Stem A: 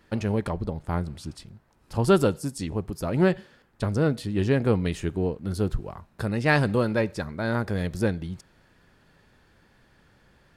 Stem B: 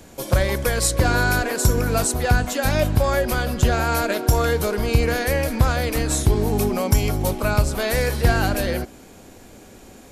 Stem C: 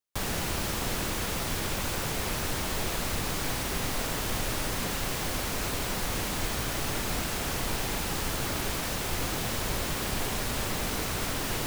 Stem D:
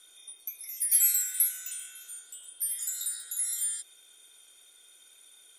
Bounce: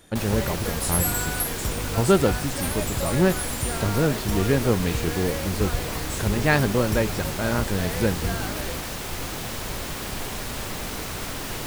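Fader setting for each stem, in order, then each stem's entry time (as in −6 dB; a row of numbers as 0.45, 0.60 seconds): +1.0, −11.5, −0.5, −3.0 decibels; 0.00, 0.00, 0.00, 0.00 seconds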